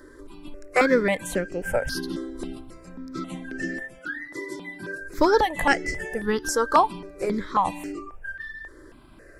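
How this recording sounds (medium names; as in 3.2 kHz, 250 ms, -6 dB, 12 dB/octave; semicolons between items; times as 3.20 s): notches that jump at a steady rate 3.7 Hz 710–3600 Hz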